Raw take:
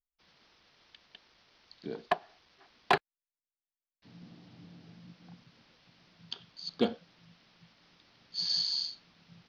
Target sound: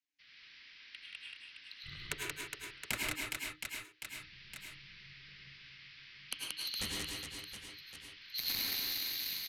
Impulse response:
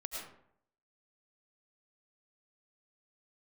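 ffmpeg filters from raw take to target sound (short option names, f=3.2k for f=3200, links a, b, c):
-filter_complex "[0:a]highshelf=f=1.6k:t=q:w=3:g=14,aresample=16000,asoftclip=type=tanh:threshold=-11dB,aresample=44100,aeval=exprs='0.422*(cos(1*acos(clip(val(0)/0.422,-1,1)))-cos(1*PI/2))+0.188*(cos(3*acos(clip(val(0)/0.422,-1,1)))-cos(3*PI/2))':c=same,aecho=1:1:180|414|718.2|1114|1628:0.631|0.398|0.251|0.158|0.1,acrossover=split=1500[a][b];[b]acompressor=threshold=-33dB:ratio=6[c];[a][c]amix=inputs=2:normalize=0[d];[1:a]atrim=start_sample=2205,afade=t=out:st=0.22:d=0.01,atrim=end_sample=10143[e];[d][e]afir=irnorm=-1:irlink=0,afreqshift=-310,volume=1.5dB"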